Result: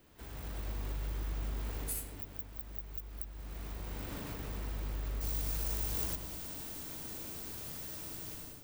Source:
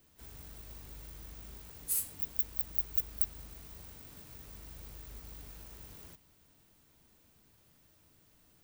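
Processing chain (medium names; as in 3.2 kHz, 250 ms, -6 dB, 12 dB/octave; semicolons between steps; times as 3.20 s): level rider gain up to 13.5 dB; bass shelf 300 Hz +9 dB; compression 3:1, threshold -39 dBFS, peak gain reduction 15.5 dB; tone controls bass -10 dB, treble -8 dB, from 5.20 s treble +5 dB; filtered feedback delay 100 ms, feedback 68%, low-pass 2 kHz, level -6 dB; trim +5 dB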